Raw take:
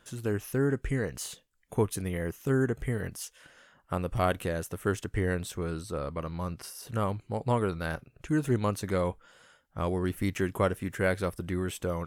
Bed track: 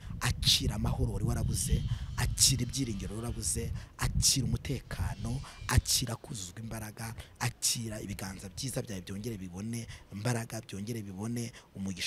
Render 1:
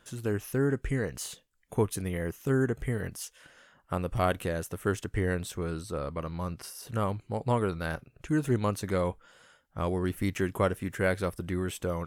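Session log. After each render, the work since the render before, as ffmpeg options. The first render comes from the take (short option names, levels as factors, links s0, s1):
-af anull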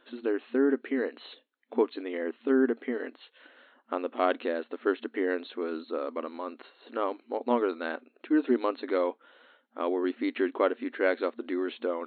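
-af "afftfilt=real='re*between(b*sr/4096,230,4300)':imag='im*between(b*sr/4096,230,4300)':win_size=4096:overlap=0.75,lowshelf=f=410:g=6.5"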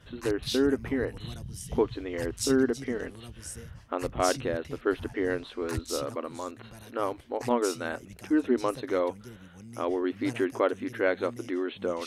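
-filter_complex "[1:a]volume=0.376[s0];[0:a][s0]amix=inputs=2:normalize=0"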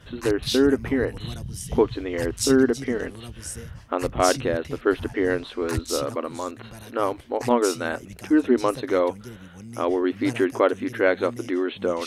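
-af "volume=2"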